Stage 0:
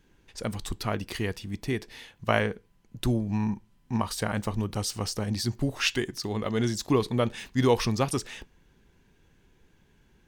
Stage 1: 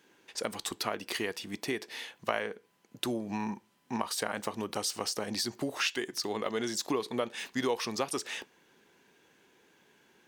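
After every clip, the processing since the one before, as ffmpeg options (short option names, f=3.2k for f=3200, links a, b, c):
-af "highpass=350,acompressor=threshold=-35dB:ratio=3,volume=4.5dB"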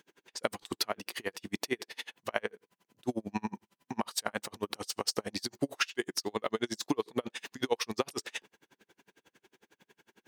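-af "aeval=exprs='val(0)*pow(10,-38*(0.5-0.5*cos(2*PI*11*n/s))/20)':c=same,volume=5.5dB"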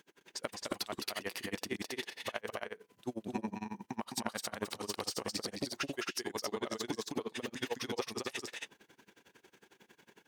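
-filter_complex "[0:a]acompressor=threshold=-37dB:ratio=3,asplit=2[a][b];[b]aecho=0:1:209.9|271.1:0.562|0.708[c];[a][c]amix=inputs=2:normalize=0"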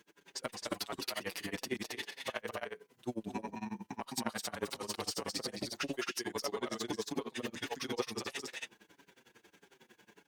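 -filter_complex "[0:a]asplit=2[a][b];[b]adelay=6.2,afreqshift=-1.6[c];[a][c]amix=inputs=2:normalize=1,volume=3dB"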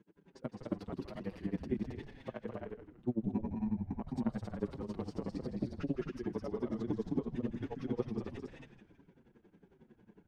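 -filter_complex "[0:a]bandpass=f=160:t=q:w=1.2:csg=0,asplit=2[a][b];[b]asplit=4[c][d][e][f];[c]adelay=161,afreqshift=-120,volume=-10.5dB[g];[d]adelay=322,afreqshift=-240,volume=-18.9dB[h];[e]adelay=483,afreqshift=-360,volume=-27.3dB[i];[f]adelay=644,afreqshift=-480,volume=-35.7dB[j];[g][h][i][j]amix=inputs=4:normalize=0[k];[a][k]amix=inputs=2:normalize=0,volume=9dB"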